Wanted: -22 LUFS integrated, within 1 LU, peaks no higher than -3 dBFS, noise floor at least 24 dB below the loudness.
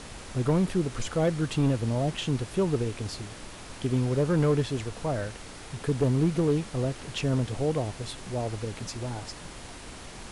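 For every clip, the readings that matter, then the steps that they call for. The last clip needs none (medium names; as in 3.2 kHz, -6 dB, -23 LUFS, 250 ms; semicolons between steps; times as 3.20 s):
clipped samples 0.8%; clipping level -17.5 dBFS; noise floor -43 dBFS; noise floor target -53 dBFS; loudness -28.5 LUFS; peak level -17.5 dBFS; loudness target -22.0 LUFS
-> clip repair -17.5 dBFS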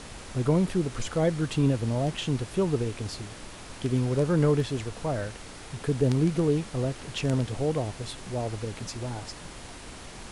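clipped samples 0.0%; noise floor -43 dBFS; noise floor target -52 dBFS
-> noise print and reduce 9 dB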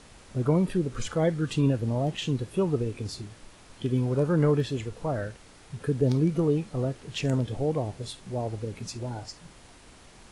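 noise floor -52 dBFS; loudness -28.0 LUFS; peak level -10.5 dBFS; loudness target -22.0 LUFS
-> trim +6 dB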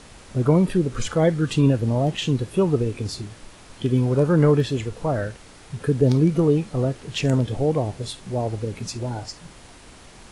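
loudness -22.0 LUFS; peak level -4.5 dBFS; noise floor -46 dBFS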